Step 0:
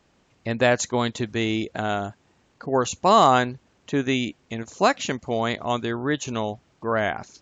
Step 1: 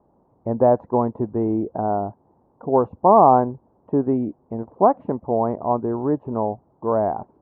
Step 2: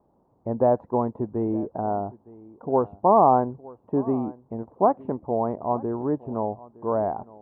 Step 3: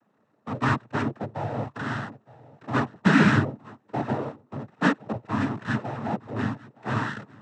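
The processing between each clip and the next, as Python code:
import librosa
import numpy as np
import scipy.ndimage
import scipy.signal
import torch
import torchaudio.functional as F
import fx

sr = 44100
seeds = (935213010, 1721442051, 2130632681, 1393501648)

y1 = scipy.signal.sosfilt(scipy.signal.cheby1(4, 1.0, 950.0, 'lowpass', fs=sr, output='sos'), x)
y1 = fx.tilt_eq(y1, sr, slope=1.5)
y1 = F.gain(torch.from_numpy(y1), 6.5).numpy()
y2 = y1 + 10.0 ** (-21.0 / 20.0) * np.pad(y1, (int(913 * sr / 1000.0), 0))[:len(y1)]
y2 = F.gain(torch.from_numpy(y2), -4.0).numpy()
y3 = np.abs(y2)
y3 = fx.noise_vocoder(y3, sr, seeds[0], bands=12)
y3 = fx.peak_eq(y3, sr, hz=220.0, db=7.0, octaves=0.89)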